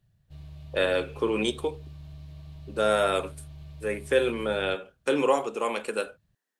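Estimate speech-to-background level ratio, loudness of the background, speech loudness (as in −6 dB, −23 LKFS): 18.0 dB, −45.5 LKFS, −27.5 LKFS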